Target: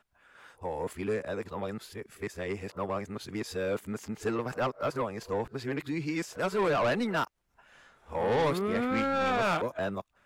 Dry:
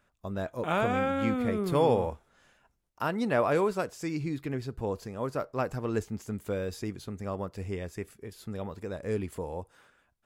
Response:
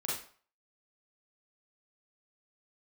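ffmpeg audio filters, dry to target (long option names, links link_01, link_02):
-filter_complex "[0:a]areverse,equalizer=frequency=1600:width=0.39:gain=7.5,acrossover=split=150[link_01][link_02];[link_01]acompressor=threshold=-48dB:ratio=6[link_03];[link_02]asoftclip=type=tanh:threshold=-23dB[link_04];[link_03][link_04]amix=inputs=2:normalize=0"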